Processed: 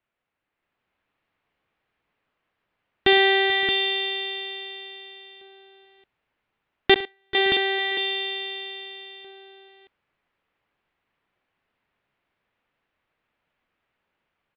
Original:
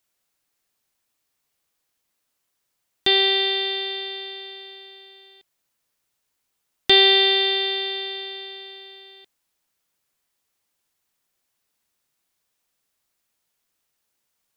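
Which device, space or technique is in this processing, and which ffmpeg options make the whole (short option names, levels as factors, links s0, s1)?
action camera in a waterproof case: -filter_complex "[0:a]asettb=1/sr,asplit=3[s0][s1][s2];[s0]atrim=end=6.944[s3];[s1]atrim=start=6.94:end=7.35,asetpts=PTS-STARTPTS,afade=t=in:d=0.004:c=qsin,afade=t=out:st=0.406:d=0.004:c=qsin,agate=range=0.00355:threshold=0.355:ratio=16:detection=peak[s4];[s2]atrim=start=7.346[s5];[s3][s4]acrossfade=d=0.004:c1=hsin:c2=qsin[s6];[s6][s5]acrossfade=d=0.004:c1=qsin:c2=hsin,lowpass=f=2700:w=0.5412,lowpass=f=2700:w=1.3066,aecho=1:1:63|109|437|439|567|625:0.168|0.126|0.119|0.119|0.1|0.473,dynaudnorm=f=130:g=11:m=1.88" -ar 24000 -c:a aac -b:a 96k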